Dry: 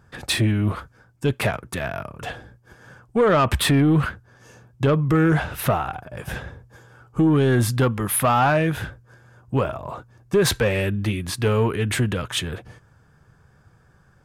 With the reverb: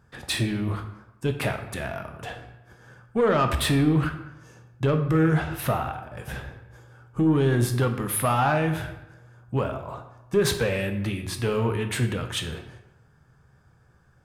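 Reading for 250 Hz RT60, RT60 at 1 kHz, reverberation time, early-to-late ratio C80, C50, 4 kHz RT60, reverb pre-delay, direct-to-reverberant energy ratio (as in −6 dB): 0.90 s, 0.95 s, 0.95 s, 11.5 dB, 9.0 dB, 0.65 s, 9 ms, 6.0 dB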